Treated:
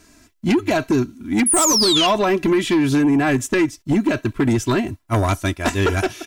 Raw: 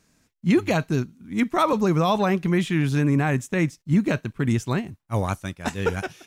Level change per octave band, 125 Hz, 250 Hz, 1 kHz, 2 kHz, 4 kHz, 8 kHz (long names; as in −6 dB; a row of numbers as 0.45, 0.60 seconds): 0.0, +5.0, +3.5, +5.0, +15.0, +19.5 decibels